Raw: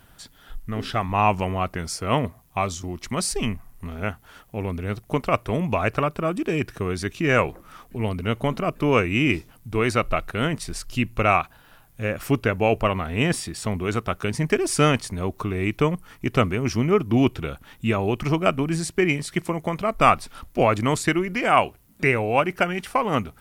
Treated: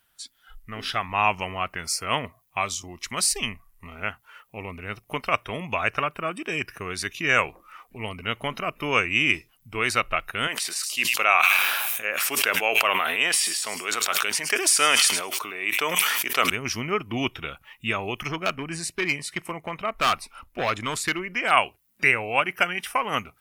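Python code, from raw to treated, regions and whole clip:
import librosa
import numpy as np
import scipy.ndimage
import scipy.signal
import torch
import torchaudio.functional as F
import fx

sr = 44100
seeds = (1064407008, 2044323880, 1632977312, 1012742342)

y = fx.chain(x, sr, fx.highpass(hz=410.0, slope=12),
    fx.echo_wet_highpass(ms=105, feedback_pct=45, hz=3600.0, wet_db=-9.5),
    fx.sustainer(db_per_s=27.0), at=(10.47, 16.5))
y = fx.chain(y, sr, fx.high_shelf(hz=2300.0, db=-4.5),
    fx.overload_stage(gain_db=15.5), at=(18.28, 21.51))
y = fx.tilt_shelf(y, sr, db=-9.5, hz=970.0)
y = fx.noise_reduce_blind(y, sr, reduce_db=14)
y = fx.peak_eq(y, sr, hz=6700.0, db=-3.0, octaves=1.7)
y = F.gain(torch.from_numpy(y), -2.0).numpy()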